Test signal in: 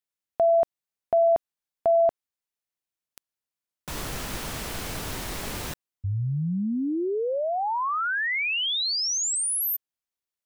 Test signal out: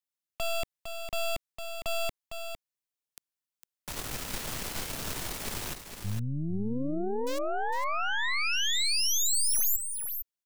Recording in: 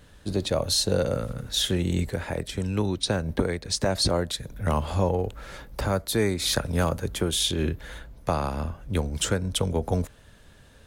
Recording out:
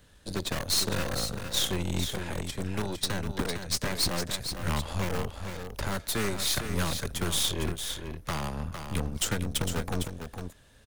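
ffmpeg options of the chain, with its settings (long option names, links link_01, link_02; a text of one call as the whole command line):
ffmpeg -i in.wav -filter_complex "[0:a]highshelf=frequency=2700:gain=4.5,aeval=exprs='0.398*(cos(1*acos(clip(val(0)/0.398,-1,1)))-cos(1*PI/2))+0.126*(cos(6*acos(clip(val(0)/0.398,-1,1)))-cos(6*PI/2))+0.141*(cos(8*acos(clip(val(0)/0.398,-1,1)))-cos(8*PI/2))':channel_layout=same,acrossover=split=390|800|6800[link_01][link_02][link_03][link_04];[link_02]aeval=exprs='(mod(20*val(0)+1,2)-1)/20':channel_layout=same[link_05];[link_01][link_05][link_03][link_04]amix=inputs=4:normalize=0,aecho=1:1:456:0.422,volume=-6.5dB" out.wav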